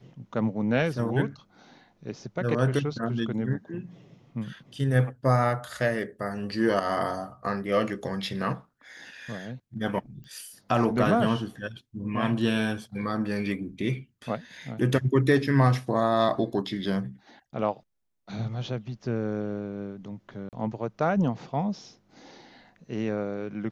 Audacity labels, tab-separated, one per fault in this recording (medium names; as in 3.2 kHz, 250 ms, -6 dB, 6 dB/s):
10.240000	10.240000	pop -35 dBFS
20.490000	20.530000	dropout 38 ms